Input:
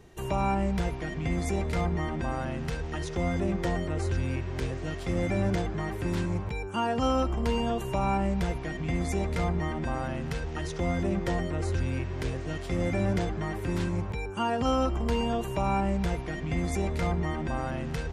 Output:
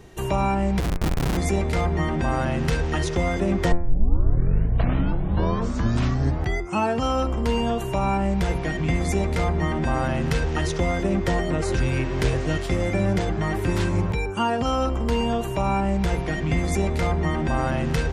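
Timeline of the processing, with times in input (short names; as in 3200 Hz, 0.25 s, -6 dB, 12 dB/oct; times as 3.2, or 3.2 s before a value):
0.8–1.37 Schmitt trigger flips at -29 dBFS
3.72 tape start 3.29 s
whole clip: de-hum 86.56 Hz, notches 29; vocal rider 0.5 s; gain +7 dB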